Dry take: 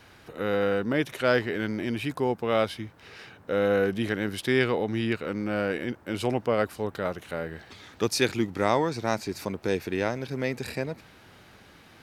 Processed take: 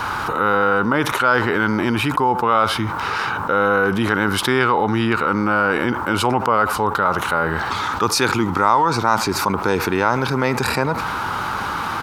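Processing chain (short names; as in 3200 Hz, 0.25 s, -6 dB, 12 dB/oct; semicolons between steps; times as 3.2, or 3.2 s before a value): band shelf 1100 Hz +14.5 dB 1 oct; speakerphone echo 80 ms, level -22 dB; fast leveller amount 70%; gain -2 dB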